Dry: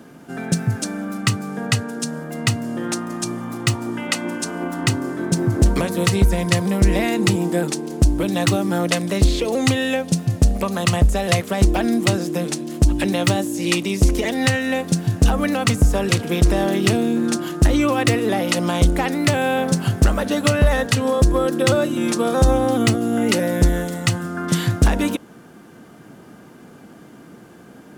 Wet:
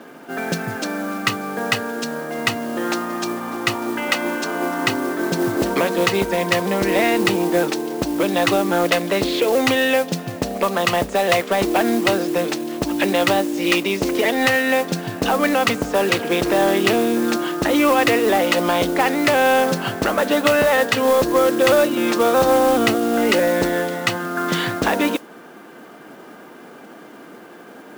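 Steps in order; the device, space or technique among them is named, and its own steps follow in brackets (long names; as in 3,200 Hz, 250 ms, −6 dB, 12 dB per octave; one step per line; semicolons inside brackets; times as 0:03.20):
carbon microphone (band-pass filter 360–3,500 Hz; soft clipping −15 dBFS, distortion −17 dB; noise that follows the level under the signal 17 dB)
level +7 dB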